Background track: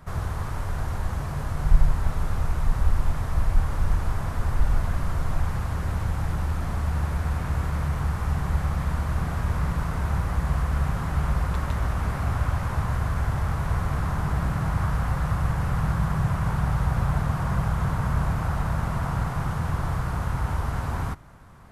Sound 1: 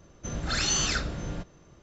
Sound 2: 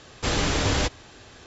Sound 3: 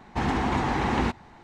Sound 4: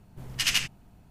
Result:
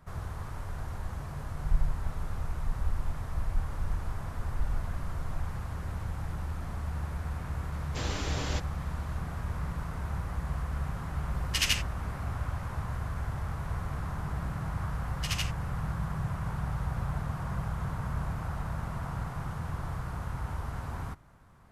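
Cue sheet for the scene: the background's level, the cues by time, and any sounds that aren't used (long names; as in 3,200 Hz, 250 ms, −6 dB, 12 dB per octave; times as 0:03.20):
background track −9 dB
0:07.72: mix in 2 −11.5 dB
0:11.15: mix in 4 −2.5 dB
0:14.84: mix in 4 −9.5 dB
not used: 1, 3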